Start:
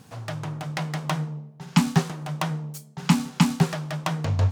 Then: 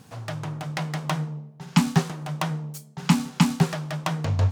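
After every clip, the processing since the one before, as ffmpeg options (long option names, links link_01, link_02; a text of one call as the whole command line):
ffmpeg -i in.wav -af anull out.wav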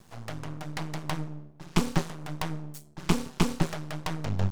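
ffmpeg -i in.wav -af "aeval=exprs='max(val(0),0)':channel_layout=same,volume=-1.5dB" out.wav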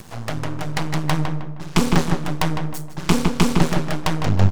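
ffmpeg -i in.wav -filter_complex "[0:a]acompressor=mode=upward:threshold=-45dB:ratio=2.5,asplit=2[link_01][link_02];[link_02]adelay=156,lowpass=frequency=2700:poles=1,volume=-6dB,asplit=2[link_03][link_04];[link_04]adelay=156,lowpass=frequency=2700:poles=1,volume=0.36,asplit=2[link_05][link_06];[link_06]adelay=156,lowpass=frequency=2700:poles=1,volume=0.36,asplit=2[link_07][link_08];[link_08]adelay=156,lowpass=frequency=2700:poles=1,volume=0.36[link_09];[link_03][link_05][link_07][link_09]amix=inputs=4:normalize=0[link_10];[link_01][link_10]amix=inputs=2:normalize=0,alimiter=level_in=11.5dB:limit=-1dB:release=50:level=0:latency=1,volume=-1dB" out.wav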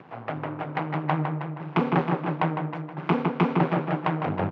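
ffmpeg -i in.wav -af "crystalizer=i=0.5:c=0,highpass=frequency=150:width=0.5412,highpass=frequency=150:width=1.3066,equalizer=frequency=210:width_type=q:width=4:gain=-9,equalizer=frequency=790:width_type=q:width=4:gain=3,equalizer=frequency=1800:width_type=q:width=4:gain=-4,lowpass=frequency=2300:width=0.5412,lowpass=frequency=2300:width=1.3066,aecho=1:1:318:0.299,volume=-2dB" out.wav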